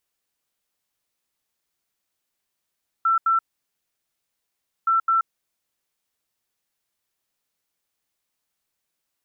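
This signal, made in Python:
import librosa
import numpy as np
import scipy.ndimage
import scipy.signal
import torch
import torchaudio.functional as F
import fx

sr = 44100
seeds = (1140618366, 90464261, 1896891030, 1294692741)

y = fx.beep_pattern(sr, wave='sine', hz=1340.0, on_s=0.13, off_s=0.08, beeps=2, pause_s=1.48, groups=2, level_db=-16.0)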